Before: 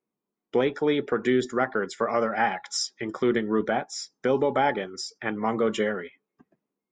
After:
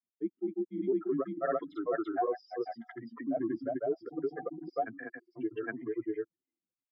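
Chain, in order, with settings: spectral contrast raised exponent 2.5; grains, spray 0.431 s, pitch spread up and down by 0 st; mistuned SSB -97 Hz 360–3200 Hz; gain -5 dB

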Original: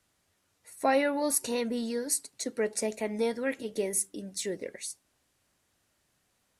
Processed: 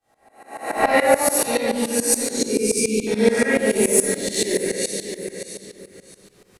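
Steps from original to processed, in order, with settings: spectral swells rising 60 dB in 1.08 s; in parallel at -6 dB: one-sided clip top -23 dBFS; 0.9–1.42 on the sum: HPF 300 Hz; feedback echo 0.619 s, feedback 22%, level -12 dB; AGC gain up to 13 dB; 2.36–3.07 brick-wall FIR band-stop 500–2200 Hz; shoebox room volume 1600 m³, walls mixed, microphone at 3.7 m; tremolo saw up 7 Hz, depth 90%; gain -6 dB

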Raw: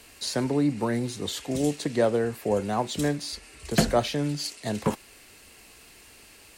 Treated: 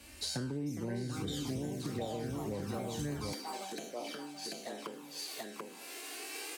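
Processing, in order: spectral trails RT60 0.54 s; recorder AGC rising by 9.2 dB/s; echoes that change speed 0.5 s, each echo +5 st, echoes 3, each echo -6 dB; envelope flanger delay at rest 3.6 ms, full sweep at -15.5 dBFS; low shelf 200 Hz +10.5 dB; resonator 780 Hz, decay 0.38 s, mix 80%; echo 0.737 s -6.5 dB; compressor 8:1, threshold -45 dBFS, peak gain reduction 21 dB; HPF 48 Hz 24 dB/oct, from 3.33 s 300 Hz; gain +10 dB

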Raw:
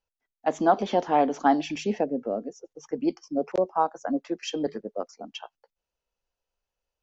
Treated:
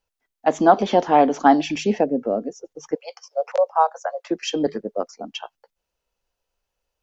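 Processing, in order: 2.95–4.31 steep high-pass 490 Hz 96 dB/oct; gain +6.5 dB

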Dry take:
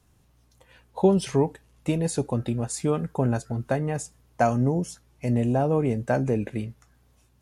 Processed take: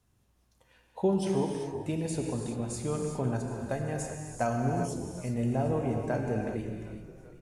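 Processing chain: 3.55–5.56 high shelf 5100 Hz +5.5 dB; frequency-shifting echo 0.384 s, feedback 62%, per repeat -44 Hz, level -16.5 dB; non-linear reverb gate 0.42 s flat, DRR 1.5 dB; gain -8.5 dB

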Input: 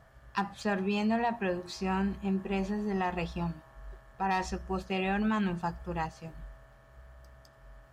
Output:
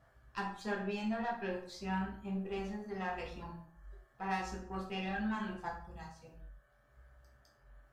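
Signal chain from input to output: reverb removal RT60 1.1 s; spectral gain 5.84–6.1, 230–3200 Hz -10 dB; tube stage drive 24 dB, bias 0.6; plate-style reverb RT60 0.63 s, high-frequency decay 0.65×, DRR -3 dB; gain -7.5 dB

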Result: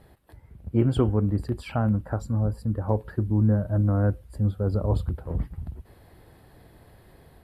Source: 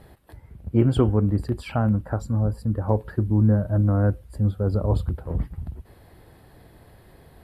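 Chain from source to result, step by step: AGC gain up to 3 dB; gain -5 dB

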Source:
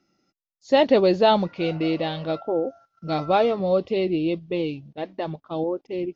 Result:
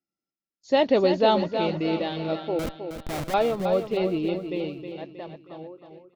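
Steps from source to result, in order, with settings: ending faded out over 2.03 s; gate with hold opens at -51 dBFS; 2.59–3.34 Schmitt trigger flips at -27 dBFS; on a send: feedback echo 0.316 s, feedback 46%, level -8 dB; on the sum: gain -3 dB

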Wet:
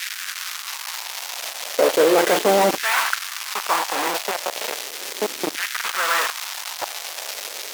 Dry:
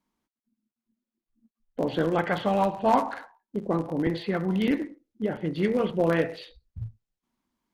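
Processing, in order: 4.3–5.85 compressor 16:1, threshold -33 dBFS, peak gain reduction 14.5 dB; bit-crush 5-bit; band noise 1700–6400 Hz -48 dBFS; fuzz box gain 48 dB, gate -43 dBFS; LFO high-pass saw down 0.36 Hz 290–1700 Hz; gain -2 dB

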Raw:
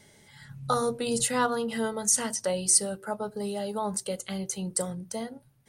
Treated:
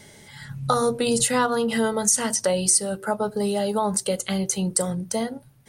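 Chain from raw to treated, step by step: compressor 2.5:1, threshold -28 dBFS, peak gain reduction 8 dB; gain +9 dB

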